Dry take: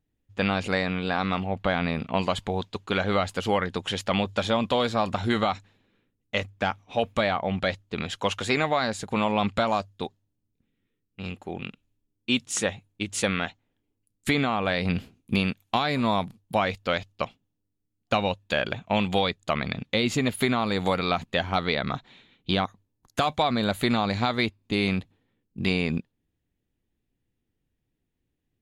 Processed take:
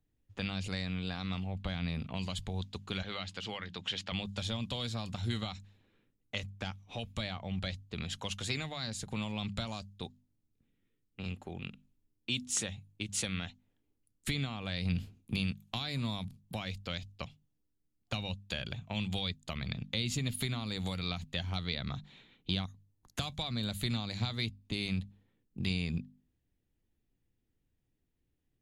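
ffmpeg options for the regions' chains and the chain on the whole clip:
ffmpeg -i in.wav -filter_complex "[0:a]asettb=1/sr,asplit=3[link_01][link_02][link_03];[link_01]atrim=end=3.024[link_04];[link_02]atrim=start=3.02:end=4.12,asetpts=PTS-STARTPTS,afade=type=in:duration=0.004:curve=qsin,afade=type=out:start_time=1.096:duration=0.004:curve=qsin,highpass=110,lowpass=3900,tiltshelf=frequency=890:gain=-4.5,bandreject=frequency=60:width_type=h:width=6,bandreject=frequency=120:width_type=h:width=6,bandreject=frequency=180:width_type=h:width=6,bandreject=frequency=240:width_type=h:width=6,bandreject=frequency=300:width_type=h:width=6[link_05];[link_03]atrim=start=4.116[link_06];[link_04][link_05]acrossfade=duration=0.004:curve1=hsin:curve2=qsin[link_07];[link_07][link_06]acrossfade=duration=0.004:curve1=qsin:curve2=hsin,lowshelf=frequency=130:gain=5,bandreject=frequency=50:width_type=h:width=6,bandreject=frequency=100:width_type=h:width=6,bandreject=frequency=150:width_type=h:width=6,bandreject=frequency=200:width_type=h:width=6,bandreject=frequency=250:width_type=h:width=6,acrossover=split=170|3000[link_08][link_09][link_10];[link_09]acompressor=threshold=-40dB:ratio=5[link_11];[link_08][link_11][link_10]amix=inputs=3:normalize=0,volume=-3.5dB" out.wav

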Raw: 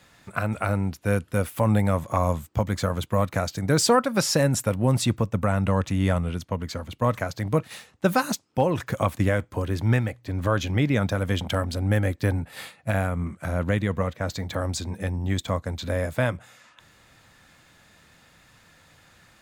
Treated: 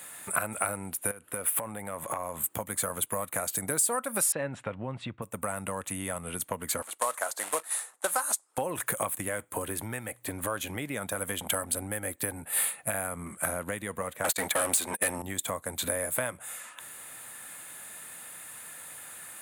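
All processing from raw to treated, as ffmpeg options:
ffmpeg -i in.wav -filter_complex "[0:a]asettb=1/sr,asplit=3[link_01][link_02][link_03];[link_01]atrim=end=1.114[link_04];[link_02]atrim=start=1.11:end=2.44,asetpts=PTS-STARTPTS,afade=type=in:duration=0.004:curve=qsin,afade=type=out:start_time=1.326:duration=0.004:curve=qsin,bass=frequency=250:gain=-3,treble=frequency=4000:gain=-8,acompressor=threshold=-32dB:ratio=16:attack=3.2:release=140:knee=1:detection=peak[link_05];[link_03]atrim=start=2.436[link_06];[link_04][link_05]acrossfade=duration=0.004:curve1=hsin:curve2=qsin[link_07];[link_07][link_06]acrossfade=duration=0.004:curve1=qsin:curve2=hsin,asettb=1/sr,asplit=3[link_08][link_09][link_10];[link_08]atrim=end=4.324[link_11];[link_09]atrim=start=4.32:end=5.22,asetpts=PTS-STARTPTS,afade=type=in:duration=0.004:curve=qsin,afade=type=out:start_time=0.896:duration=0.004:curve=qsin,lowpass=frequency=3500:width=0.5412,lowpass=frequency=3500:width=1.3066,asubboost=boost=6:cutoff=230[link_12];[link_10]atrim=start=5.216[link_13];[link_11][link_12]acrossfade=duration=0.004:curve1=hsin:curve2=qsin[link_14];[link_14][link_13]acrossfade=duration=0.004:curve1=qsin:curve2=hsin,asettb=1/sr,asplit=3[link_15][link_16][link_17];[link_15]atrim=end=6.824[link_18];[link_16]atrim=start=6.82:end=8.58,asetpts=PTS-STARTPTS,afade=type=in:duration=0.004:curve=qsin,afade=type=out:start_time=1.756:duration=0.004:curve=qsin,equalizer=frequency=2700:width=1.3:gain=-12,acrusher=bits=4:mode=log:mix=0:aa=0.000001,highpass=710,lowpass=7600[link_19];[link_17]atrim=start=8.576[link_20];[link_18][link_19]acrossfade=duration=0.004:curve1=hsin:curve2=qsin[link_21];[link_21][link_20]acrossfade=duration=0.004:curve1=qsin:curve2=hsin,asettb=1/sr,asplit=3[link_22][link_23][link_24];[link_22]atrim=end=14.244[link_25];[link_23]atrim=start=14.24:end=15.22,asetpts=PTS-STARTPTS,afade=type=in:duration=0.004:curve=qsin,afade=type=out:start_time=0.976:duration=0.004:curve=qsin,agate=range=-37dB:threshold=-34dB:ratio=16:release=100:detection=peak,asplit=2[link_26][link_27];[link_27]highpass=frequency=720:poles=1,volume=26dB,asoftclip=type=tanh:threshold=-14dB[link_28];[link_26][link_28]amix=inputs=2:normalize=0,lowpass=frequency=6900:poles=1,volume=-6dB[link_29];[link_24]atrim=start=15.216[link_30];[link_25][link_29]acrossfade=duration=0.004:curve1=hsin:curve2=qsin[link_31];[link_31][link_30]acrossfade=duration=0.004:curve1=qsin:curve2=hsin,highshelf=frequency=7200:width_type=q:width=3:gain=12,acompressor=threshold=-31dB:ratio=10,highpass=frequency=640:poles=1,volume=8dB" out.wav

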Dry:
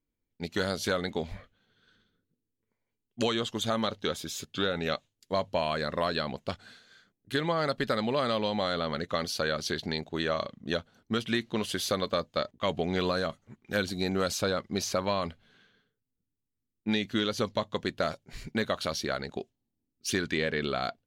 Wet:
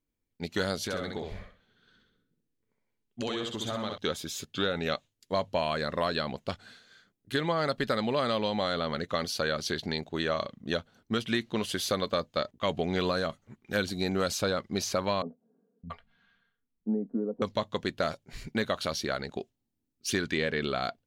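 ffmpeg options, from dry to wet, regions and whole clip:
ffmpeg -i in.wav -filter_complex "[0:a]asettb=1/sr,asplit=3[link_01][link_02][link_03];[link_01]atrim=end=0.844[link_04];[link_02]atrim=start=0.84:end=3.98,asetpts=PTS-STARTPTS,afade=type=in:duration=0.004:curve=qsin,afade=type=out:start_time=3.136:duration=0.004:curve=qsin,highshelf=frequency=7800:gain=-6,acompressor=threshold=-32dB:ratio=2.5:attack=3.2:release=140:knee=1:detection=peak,aecho=1:1:64|128|192|256:0.631|0.183|0.0531|0.0154,atrim=end_sample=138474[link_05];[link_03]atrim=start=3.976[link_06];[link_04][link_05]acrossfade=duration=0.004:curve1=hsin:curve2=qsin[link_07];[link_07][link_06]acrossfade=duration=0.004:curve1=qsin:curve2=hsin,asettb=1/sr,asplit=3[link_08][link_09][link_10];[link_08]atrim=end=15.224[link_11];[link_09]atrim=start=15.22:end=17.42,asetpts=PTS-STARTPTS,afade=type=in:duration=0.004:curve=qsin,afade=type=out:start_time=2.196:duration=0.004:curve=qsin,lowpass=frequency=1100:poles=1,aecho=1:1:4.3:0.62,atrim=end_sample=97020,acrossover=split=180|700[link_12][link_13][link_14];[link_12]adelay=610[link_15];[link_14]adelay=680[link_16];[link_15][link_13][link_16]amix=inputs=3:normalize=0,atrim=end_sample=97020[link_17];[link_10]atrim=start=17.416[link_18];[link_11][link_17]acrossfade=duration=0.004:curve1=hsin:curve2=qsin[link_19];[link_19][link_18]acrossfade=duration=0.004:curve1=qsin:curve2=hsin" out.wav

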